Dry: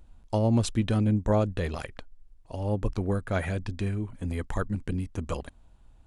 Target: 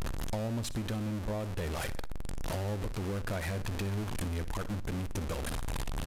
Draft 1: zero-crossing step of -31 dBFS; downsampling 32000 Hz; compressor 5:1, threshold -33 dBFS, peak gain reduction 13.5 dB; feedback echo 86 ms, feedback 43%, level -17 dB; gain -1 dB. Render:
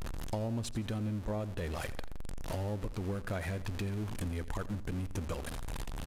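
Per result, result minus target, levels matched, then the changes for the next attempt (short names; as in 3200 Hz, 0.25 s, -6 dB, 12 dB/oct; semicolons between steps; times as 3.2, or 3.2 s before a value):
echo 26 ms late; zero-crossing step: distortion -7 dB
change: feedback echo 60 ms, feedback 43%, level -17 dB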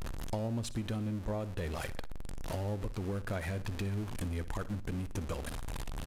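zero-crossing step: distortion -7 dB
change: zero-crossing step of -21.5 dBFS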